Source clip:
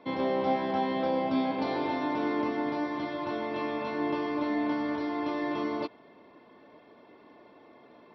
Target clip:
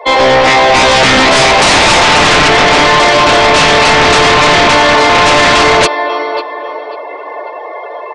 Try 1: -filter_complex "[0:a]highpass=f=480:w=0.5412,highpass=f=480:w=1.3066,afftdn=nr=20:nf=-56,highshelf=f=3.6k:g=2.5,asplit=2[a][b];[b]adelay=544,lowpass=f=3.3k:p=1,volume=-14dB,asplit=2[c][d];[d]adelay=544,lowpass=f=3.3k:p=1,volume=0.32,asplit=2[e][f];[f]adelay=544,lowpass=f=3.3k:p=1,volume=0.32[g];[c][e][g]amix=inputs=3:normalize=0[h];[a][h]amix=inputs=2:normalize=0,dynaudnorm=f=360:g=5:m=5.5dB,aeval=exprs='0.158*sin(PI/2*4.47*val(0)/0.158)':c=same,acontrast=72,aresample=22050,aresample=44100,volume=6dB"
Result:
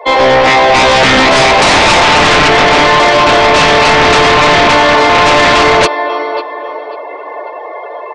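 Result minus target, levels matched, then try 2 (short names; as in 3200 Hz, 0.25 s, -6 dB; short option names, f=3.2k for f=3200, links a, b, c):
8000 Hz band -3.5 dB
-filter_complex "[0:a]highpass=f=480:w=0.5412,highpass=f=480:w=1.3066,afftdn=nr=20:nf=-56,highshelf=f=3.6k:g=8.5,asplit=2[a][b];[b]adelay=544,lowpass=f=3.3k:p=1,volume=-14dB,asplit=2[c][d];[d]adelay=544,lowpass=f=3.3k:p=1,volume=0.32,asplit=2[e][f];[f]adelay=544,lowpass=f=3.3k:p=1,volume=0.32[g];[c][e][g]amix=inputs=3:normalize=0[h];[a][h]amix=inputs=2:normalize=0,dynaudnorm=f=360:g=5:m=5.5dB,aeval=exprs='0.158*sin(PI/2*4.47*val(0)/0.158)':c=same,acontrast=72,aresample=22050,aresample=44100,volume=6dB"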